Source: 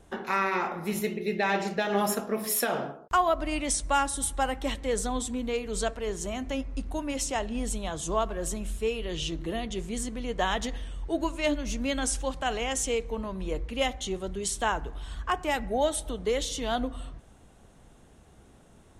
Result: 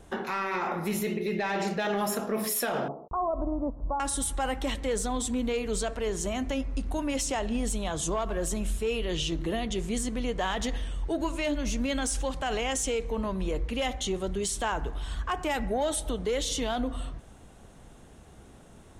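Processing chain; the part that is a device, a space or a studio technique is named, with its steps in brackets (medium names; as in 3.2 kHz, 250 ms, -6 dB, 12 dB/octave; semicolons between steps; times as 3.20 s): soft clipper into limiter (saturation -17.5 dBFS, distortion -20 dB; peak limiter -25.5 dBFS, peak gain reduction 7 dB); 2.88–4.00 s: steep low-pass 1.1 kHz 48 dB/octave; trim +4 dB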